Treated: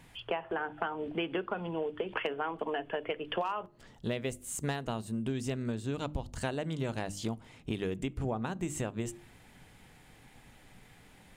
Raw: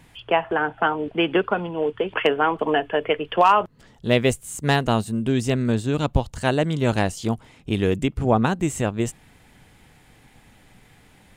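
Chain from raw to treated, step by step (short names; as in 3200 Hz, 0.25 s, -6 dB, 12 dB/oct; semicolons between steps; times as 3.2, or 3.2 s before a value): notches 50/100/150/200/250/300/350 Hz; compressor 12:1, threshold -26 dBFS, peak gain reduction 15.5 dB; on a send: reverb RT60 0.50 s, pre-delay 3 ms, DRR 20 dB; on the sum: gain -4 dB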